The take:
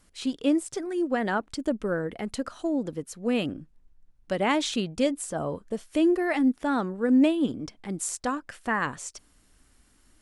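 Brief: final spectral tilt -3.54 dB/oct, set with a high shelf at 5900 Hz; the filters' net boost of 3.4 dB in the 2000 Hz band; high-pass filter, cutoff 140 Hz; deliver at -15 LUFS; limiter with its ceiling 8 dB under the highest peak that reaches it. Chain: HPF 140 Hz; bell 2000 Hz +3.5 dB; high shelf 5900 Hz +7.5 dB; gain +13.5 dB; limiter -4 dBFS

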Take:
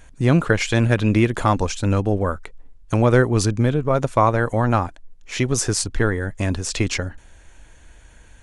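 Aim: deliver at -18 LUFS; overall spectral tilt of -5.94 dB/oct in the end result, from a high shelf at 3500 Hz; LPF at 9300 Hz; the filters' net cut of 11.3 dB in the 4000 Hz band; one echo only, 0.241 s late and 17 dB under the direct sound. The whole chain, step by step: LPF 9300 Hz; high shelf 3500 Hz -8.5 dB; bell 4000 Hz -9 dB; echo 0.241 s -17 dB; gain +2.5 dB

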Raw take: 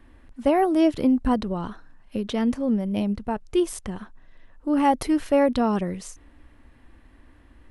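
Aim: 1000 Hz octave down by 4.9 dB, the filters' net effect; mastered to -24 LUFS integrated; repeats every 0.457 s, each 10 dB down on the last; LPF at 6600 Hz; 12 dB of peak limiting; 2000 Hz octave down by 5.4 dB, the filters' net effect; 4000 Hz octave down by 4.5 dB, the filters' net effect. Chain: LPF 6600 Hz; bell 1000 Hz -6 dB; bell 2000 Hz -4 dB; bell 4000 Hz -3.5 dB; limiter -23 dBFS; feedback echo 0.457 s, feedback 32%, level -10 dB; gain +8 dB

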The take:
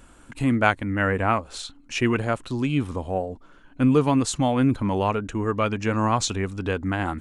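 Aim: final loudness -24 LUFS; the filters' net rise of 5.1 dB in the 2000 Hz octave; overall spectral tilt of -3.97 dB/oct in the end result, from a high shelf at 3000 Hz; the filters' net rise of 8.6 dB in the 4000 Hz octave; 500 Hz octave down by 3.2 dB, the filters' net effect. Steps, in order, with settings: bell 500 Hz -4.5 dB; bell 2000 Hz +4 dB; high shelf 3000 Hz +6 dB; bell 4000 Hz +5 dB; gain -1.5 dB

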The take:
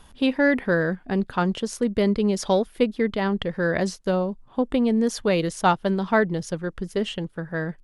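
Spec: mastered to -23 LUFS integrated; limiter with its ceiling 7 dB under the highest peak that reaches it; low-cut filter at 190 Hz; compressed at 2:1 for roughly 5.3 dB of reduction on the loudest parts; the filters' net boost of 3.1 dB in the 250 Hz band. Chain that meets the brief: HPF 190 Hz; bell 250 Hz +6 dB; compressor 2:1, threshold -22 dBFS; gain +4 dB; limiter -12 dBFS

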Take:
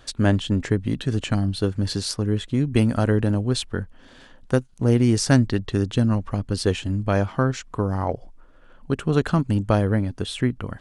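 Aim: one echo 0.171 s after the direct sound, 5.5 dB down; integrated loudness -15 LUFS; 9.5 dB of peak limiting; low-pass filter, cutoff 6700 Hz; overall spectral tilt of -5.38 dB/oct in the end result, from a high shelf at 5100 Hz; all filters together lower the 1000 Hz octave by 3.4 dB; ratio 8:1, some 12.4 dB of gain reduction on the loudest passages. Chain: LPF 6700 Hz; bell 1000 Hz -5 dB; high shelf 5100 Hz +5 dB; compressor 8:1, threshold -26 dBFS; limiter -22.5 dBFS; echo 0.171 s -5.5 dB; gain +18 dB

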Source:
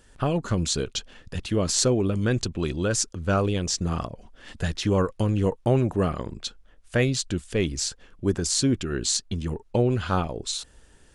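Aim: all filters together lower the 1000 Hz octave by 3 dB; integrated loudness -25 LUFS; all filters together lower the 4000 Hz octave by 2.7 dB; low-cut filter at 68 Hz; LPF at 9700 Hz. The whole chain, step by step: HPF 68 Hz; LPF 9700 Hz; bell 1000 Hz -4 dB; bell 4000 Hz -3 dB; gain +1.5 dB

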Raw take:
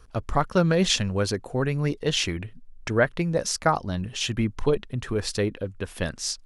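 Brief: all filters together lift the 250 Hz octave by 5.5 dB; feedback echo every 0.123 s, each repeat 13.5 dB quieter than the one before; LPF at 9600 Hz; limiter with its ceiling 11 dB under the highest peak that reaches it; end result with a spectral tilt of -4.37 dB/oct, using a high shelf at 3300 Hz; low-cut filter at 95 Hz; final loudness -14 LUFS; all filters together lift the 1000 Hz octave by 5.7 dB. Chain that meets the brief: HPF 95 Hz; LPF 9600 Hz; bell 250 Hz +8 dB; bell 1000 Hz +6.5 dB; high shelf 3300 Hz +6 dB; limiter -11.5 dBFS; feedback echo 0.123 s, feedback 21%, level -13.5 dB; gain +10 dB

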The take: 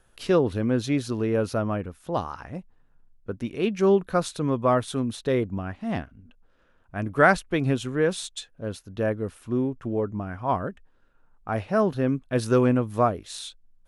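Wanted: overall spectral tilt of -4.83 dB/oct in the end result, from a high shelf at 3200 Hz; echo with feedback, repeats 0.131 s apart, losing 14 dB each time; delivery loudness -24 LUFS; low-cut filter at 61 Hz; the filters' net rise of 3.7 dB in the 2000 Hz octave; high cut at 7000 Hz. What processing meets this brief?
HPF 61 Hz; LPF 7000 Hz; bell 2000 Hz +3.5 dB; high shelf 3200 Hz +6 dB; feedback echo 0.131 s, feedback 20%, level -14 dB; gain +1 dB

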